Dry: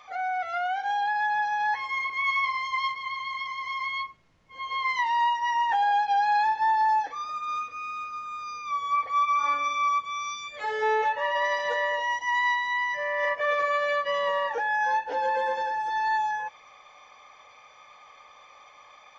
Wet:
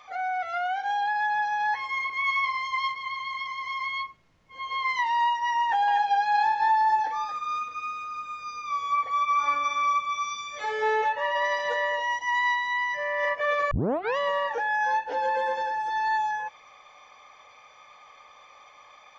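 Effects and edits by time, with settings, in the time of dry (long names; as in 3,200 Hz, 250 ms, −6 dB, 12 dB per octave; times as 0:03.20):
0:05.63–0:11.01: single-tap delay 246 ms −8.5 dB
0:13.71: tape start 0.46 s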